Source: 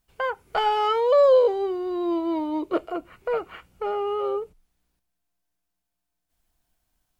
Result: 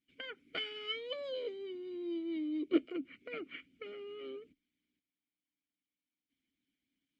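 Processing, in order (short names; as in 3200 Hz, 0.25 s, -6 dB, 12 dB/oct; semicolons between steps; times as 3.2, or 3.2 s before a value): harmonic-percussive split harmonic -11 dB; vowel filter i; gain +10 dB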